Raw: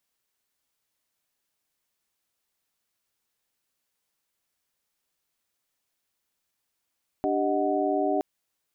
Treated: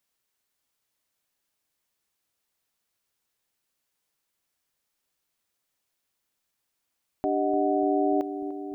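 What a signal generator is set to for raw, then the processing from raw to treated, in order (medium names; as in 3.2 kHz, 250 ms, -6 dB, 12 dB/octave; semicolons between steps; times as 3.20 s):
chord D4/G4/D#5/F#5 sine, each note -28 dBFS 0.97 s
filtered feedback delay 296 ms, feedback 80%, low-pass 970 Hz, level -12 dB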